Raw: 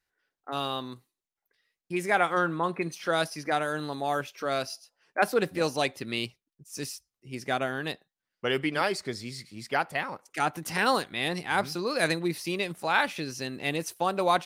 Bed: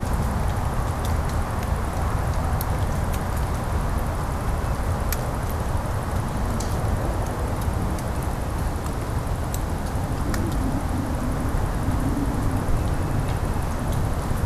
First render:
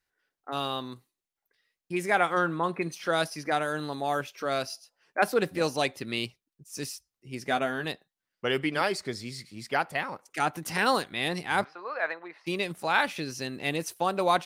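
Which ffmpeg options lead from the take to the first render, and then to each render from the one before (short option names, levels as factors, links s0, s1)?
-filter_complex "[0:a]asettb=1/sr,asplit=3[s0][s1][s2];[s0]atrim=end=7.454[s3];[s1]atrim=start=7.45:end=7.85,asetpts=PTS-STARTPTS,afade=t=in:d=0.004:c=qsin,afade=t=out:st=0.396:d=0.004:c=qsin,asplit=2[s4][s5];[s5]adelay=12,volume=0.422[s6];[s4][s6]amix=inputs=2:normalize=0,atrim=end_sample=17640[s7];[s2]atrim=start=7.846[s8];[s3][s7]acrossfade=d=0.004:c1=hsin:c2=qsin[s9];[s9][s8]acrossfade=d=0.004:c1=qsin:c2=hsin,asplit=3[s10][s11][s12];[s10]afade=t=out:st=11.63:d=0.02[s13];[s11]asuperpass=centerf=1100:order=4:qfactor=0.89,afade=t=in:st=11.63:d=0.02,afade=t=out:st=12.46:d=0.02[s14];[s12]afade=t=in:st=12.46:d=0.02[s15];[s13][s14][s15]amix=inputs=3:normalize=0"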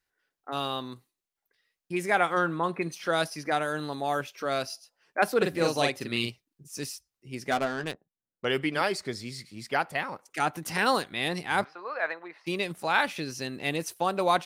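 -filter_complex "[0:a]asettb=1/sr,asplit=3[s0][s1][s2];[s0]atrim=end=5.374[s3];[s1]atrim=start=5.37:end=6.74,asetpts=PTS-STARTPTS,afade=t=in:d=0.004:c=qsin,afade=t=out:st=1.366:d=0.004:c=qsin,asplit=2[s4][s5];[s5]adelay=42,volume=0.708[s6];[s4][s6]amix=inputs=2:normalize=0,atrim=end_sample=60417[s7];[s2]atrim=start=6.736[s8];[s3][s7]acrossfade=d=0.004:c1=hsin:c2=qsin[s9];[s9][s8]acrossfade=d=0.004:c1=qsin:c2=hsin,asettb=1/sr,asplit=3[s10][s11][s12];[s10]atrim=end=7.514[s13];[s11]atrim=start=7.51:end=8.45,asetpts=PTS-STARTPTS,afade=t=in:d=0.004:c=qsin,afade=t=out:st=0.936:d=0.004:c=qsin,adynamicsmooth=sensitivity=4.5:basefreq=560[s14];[s12]atrim=start=8.446[s15];[s13][s14]acrossfade=d=0.004:c1=hsin:c2=qsin[s16];[s16][s15]acrossfade=d=0.004:c1=qsin:c2=hsin"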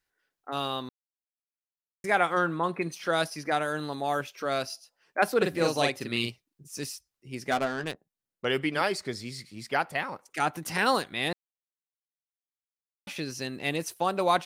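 -filter_complex "[0:a]asplit=5[s0][s1][s2][s3][s4];[s0]atrim=end=0.89,asetpts=PTS-STARTPTS,afade=t=out:st=0.886:d=0.004:c=hsin[s5];[s1]atrim=start=0.89:end=2.04,asetpts=PTS-STARTPTS,volume=0[s6];[s2]atrim=start=2.04:end=11.33,asetpts=PTS-STARTPTS,afade=t=in:d=0.004:c=hsin,afade=t=out:st=9.286:d=0.004:c=hsin[s7];[s3]atrim=start=11.33:end=13.07,asetpts=PTS-STARTPTS,volume=0[s8];[s4]atrim=start=13.07,asetpts=PTS-STARTPTS,afade=t=in:d=0.004:c=hsin[s9];[s5][s6][s7][s8][s9]concat=n=5:v=0:a=1"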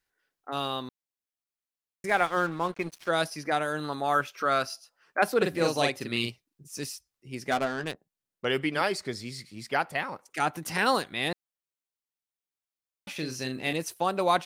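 -filter_complex "[0:a]asettb=1/sr,asplit=3[s0][s1][s2];[s0]atrim=end=2.094[s3];[s1]atrim=start=2.09:end=3.09,asetpts=PTS-STARTPTS,afade=t=in:d=0.004:c=qsin,afade=t=out:st=0.996:d=0.004:c=qsin,aeval=exprs='sgn(val(0))*max(abs(val(0))-0.00841,0)':c=same[s4];[s2]atrim=start=3.086[s5];[s3][s4]acrossfade=d=0.004:c1=hsin:c2=qsin[s6];[s6][s5]acrossfade=d=0.004:c1=qsin:c2=hsin,asettb=1/sr,asplit=3[s7][s8][s9];[s7]atrim=end=3.844[s10];[s8]atrim=start=3.84:end=5.19,asetpts=PTS-STARTPTS,afade=t=in:d=0.004:c=qsin,afade=t=out:st=1.346:d=0.004:c=qsin,equalizer=f=1300:t=o:w=0.61:g=9.5[s11];[s9]atrim=start=5.186[s12];[s10][s11]acrossfade=d=0.004:c1=hsin:c2=qsin[s13];[s13][s12]acrossfade=d=0.004:c1=qsin:c2=hsin,asettb=1/sr,asplit=3[s14][s15][s16];[s14]atrim=end=13.154[s17];[s15]atrim=start=13.15:end=13.73,asetpts=PTS-STARTPTS,afade=t=in:d=0.004:c=qsin,afade=t=out:st=0.576:d=0.004:c=qsin,asplit=2[s18][s19];[s19]adelay=39,volume=0.447[s20];[s18][s20]amix=inputs=2:normalize=0,atrim=end_sample=25578[s21];[s16]atrim=start=13.726[s22];[s17][s21]acrossfade=d=0.004:c1=hsin:c2=qsin[s23];[s23][s22]acrossfade=d=0.004:c1=qsin:c2=hsin"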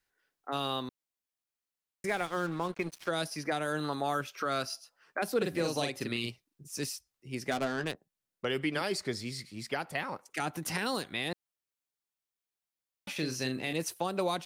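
-filter_complex "[0:a]acrossover=split=430|3000[s0][s1][s2];[s1]acompressor=threshold=0.0316:ratio=6[s3];[s0][s3][s2]amix=inputs=3:normalize=0,alimiter=limit=0.0944:level=0:latency=1:release=149"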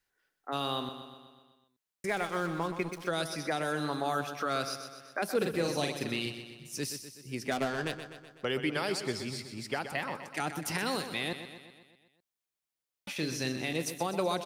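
-af "aecho=1:1:125|250|375|500|625|750|875:0.316|0.183|0.106|0.0617|0.0358|0.0208|0.012"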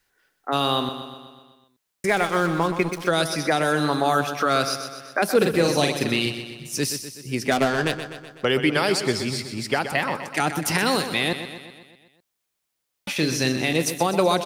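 -af "volume=3.55"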